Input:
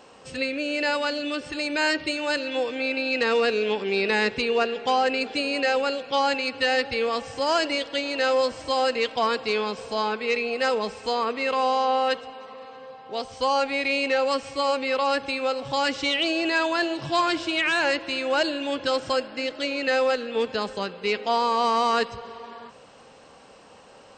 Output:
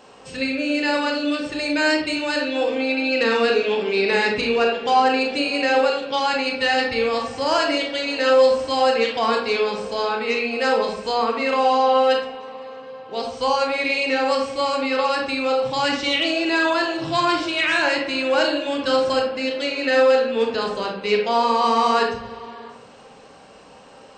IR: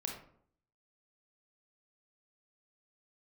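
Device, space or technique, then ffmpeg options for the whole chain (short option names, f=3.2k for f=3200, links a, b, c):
bathroom: -filter_complex "[1:a]atrim=start_sample=2205[a];[0:a][a]afir=irnorm=-1:irlink=0,volume=3.5dB"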